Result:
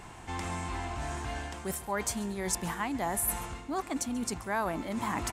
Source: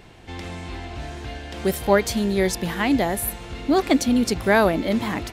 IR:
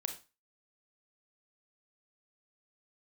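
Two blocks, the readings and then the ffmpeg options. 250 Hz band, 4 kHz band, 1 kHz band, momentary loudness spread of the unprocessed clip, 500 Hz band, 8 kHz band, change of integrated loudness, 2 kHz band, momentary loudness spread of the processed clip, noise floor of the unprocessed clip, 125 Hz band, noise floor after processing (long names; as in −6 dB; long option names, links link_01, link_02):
−14.0 dB, −11.5 dB, −7.5 dB, 16 LU, −15.5 dB, −2.5 dB, −12.5 dB, −11.0 dB, 6 LU, −45 dBFS, −9.0 dB, −47 dBFS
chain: -af "areverse,acompressor=threshold=-31dB:ratio=5,areverse,equalizer=frequency=500:width_type=o:width=1:gain=-5,equalizer=frequency=1000:width_type=o:width=1:gain=10,equalizer=frequency=4000:width_type=o:width=1:gain=-6,equalizer=frequency=8000:width_type=o:width=1:gain=11,aecho=1:1:137:0.0891,volume=-1.5dB"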